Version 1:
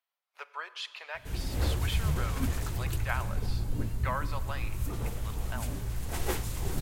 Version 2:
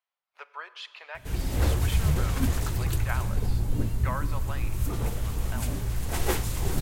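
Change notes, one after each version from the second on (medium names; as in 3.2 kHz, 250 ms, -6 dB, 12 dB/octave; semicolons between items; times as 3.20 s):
speech: add treble shelf 6.1 kHz -10.5 dB; background +5.0 dB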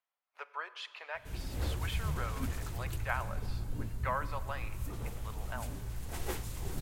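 speech: add peaking EQ 4.1 kHz -4 dB 1.5 oct; background -11.0 dB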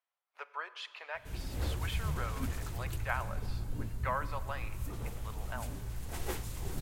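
no change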